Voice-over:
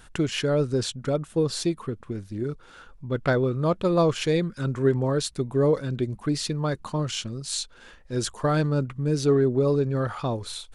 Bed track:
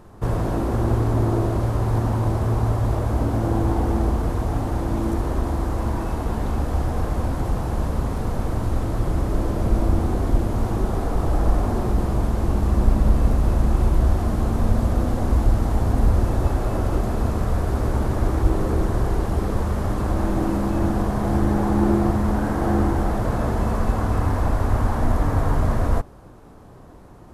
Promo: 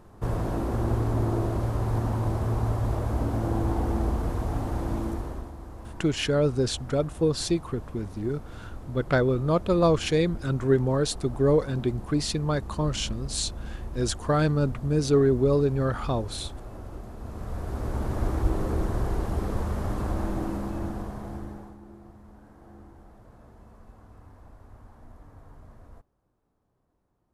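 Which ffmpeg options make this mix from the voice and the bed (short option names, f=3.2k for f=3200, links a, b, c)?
-filter_complex "[0:a]adelay=5850,volume=0dB[a];[1:a]volume=6.5dB,afade=t=out:st=4.92:d=0.6:silence=0.237137,afade=t=in:st=17.19:d=1.04:silence=0.251189,afade=t=out:st=20.03:d=1.75:silence=0.0668344[b];[a][b]amix=inputs=2:normalize=0"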